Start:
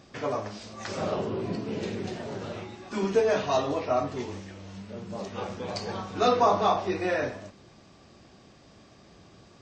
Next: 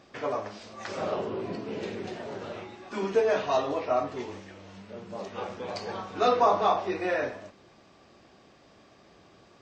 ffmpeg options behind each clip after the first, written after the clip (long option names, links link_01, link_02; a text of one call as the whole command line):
ffmpeg -i in.wav -af "bass=frequency=250:gain=-8,treble=frequency=4000:gain=-6" out.wav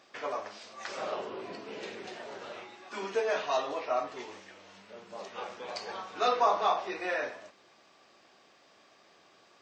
ffmpeg -i in.wav -af "highpass=frequency=870:poles=1" out.wav